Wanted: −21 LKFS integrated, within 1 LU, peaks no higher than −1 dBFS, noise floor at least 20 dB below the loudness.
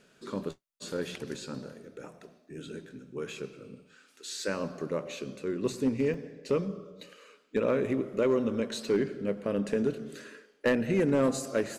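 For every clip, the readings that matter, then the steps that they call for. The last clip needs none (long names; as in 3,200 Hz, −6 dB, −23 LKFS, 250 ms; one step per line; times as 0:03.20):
share of clipped samples 0.4%; peaks flattened at −19.0 dBFS; number of dropouts 1; longest dropout 3.1 ms; integrated loudness −31.5 LKFS; sample peak −19.0 dBFS; target loudness −21.0 LKFS
→ clipped peaks rebuilt −19 dBFS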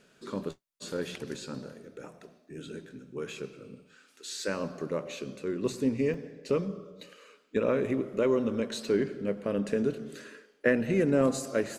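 share of clipped samples 0.0%; number of dropouts 1; longest dropout 3.1 ms
→ repair the gap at 0:06.14, 3.1 ms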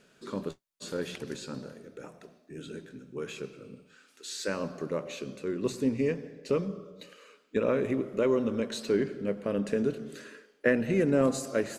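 number of dropouts 0; integrated loudness −31.0 LKFS; sample peak −10.0 dBFS; target loudness −21.0 LKFS
→ level +10 dB
brickwall limiter −1 dBFS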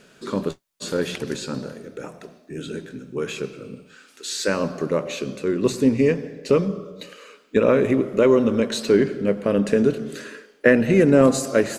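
integrated loudness −21.0 LKFS; sample peak −1.0 dBFS; background noise floor −55 dBFS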